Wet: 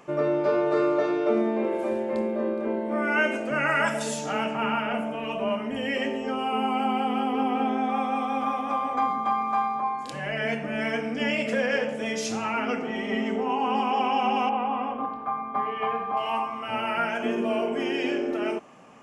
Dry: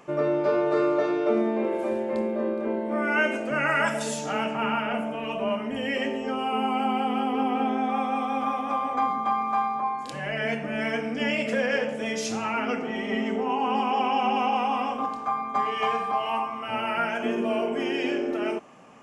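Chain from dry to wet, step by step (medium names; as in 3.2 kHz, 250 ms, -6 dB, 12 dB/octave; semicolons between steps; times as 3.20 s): 14.49–16.17 s: distance through air 430 m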